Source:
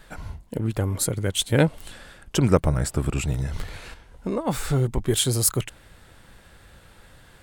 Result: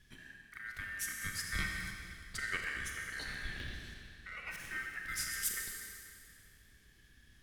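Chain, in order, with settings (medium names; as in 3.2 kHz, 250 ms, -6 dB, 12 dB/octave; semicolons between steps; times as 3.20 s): 3.19–3.74 s: graphic EQ 125/250/500/1000/2000/8000 Hz -5/+5/+3/+11/+9/-10 dB; bucket-brigade echo 80 ms, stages 2048, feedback 81%, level -16 dB; ring modulator 1.7 kHz; 4.56–5.05 s: expander -25 dBFS; amplifier tone stack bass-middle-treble 10-0-1; Schroeder reverb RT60 2.1 s, combs from 30 ms, DRR 1.5 dB; 1.21–1.91 s: three bands compressed up and down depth 40%; trim +8.5 dB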